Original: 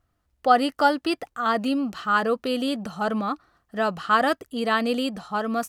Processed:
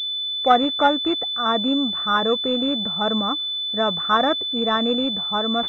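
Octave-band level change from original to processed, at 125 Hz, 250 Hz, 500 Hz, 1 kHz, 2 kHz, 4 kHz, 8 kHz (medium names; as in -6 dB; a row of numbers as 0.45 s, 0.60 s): +2.5 dB, +2.5 dB, +2.5 dB, +1.5 dB, -1.5 dB, +14.5 dB, under -10 dB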